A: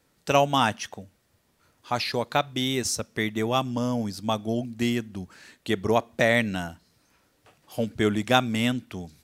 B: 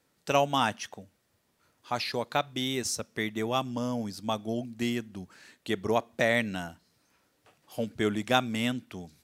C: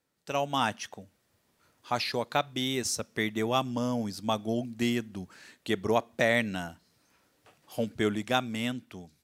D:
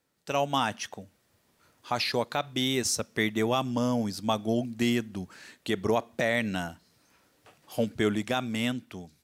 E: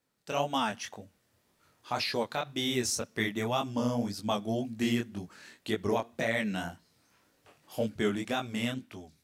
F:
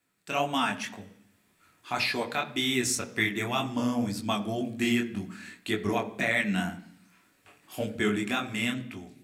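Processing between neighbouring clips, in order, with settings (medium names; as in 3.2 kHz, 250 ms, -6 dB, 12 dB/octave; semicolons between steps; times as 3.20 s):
bass shelf 68 Hz -10.5 dB; trim -4 dB
level rider gain up to 10 dB; trim -8 dB
peak limiter -17.5 dBFS, peak gain reduction 8 dB; trim +3 dB
chorus 1.9 Hz, delay 18 ms, depth 8 ms
reverberation RT60 0.70 s, pre-delay 3 ms, DRR 8 dB; trim +3.5 dB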